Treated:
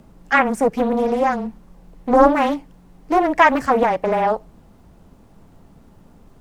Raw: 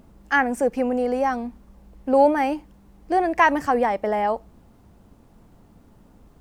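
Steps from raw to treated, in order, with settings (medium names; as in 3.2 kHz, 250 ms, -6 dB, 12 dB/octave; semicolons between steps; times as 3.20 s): frequency shift -20 Hz; loudspeaker Doppler distortion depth 0.45 ms; trim +4 dB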